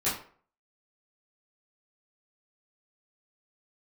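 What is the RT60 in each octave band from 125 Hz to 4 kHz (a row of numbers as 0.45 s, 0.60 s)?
0.40 s, 0.45 s, 0.50 s, 0.45 s, 0.40 s, 0.30 s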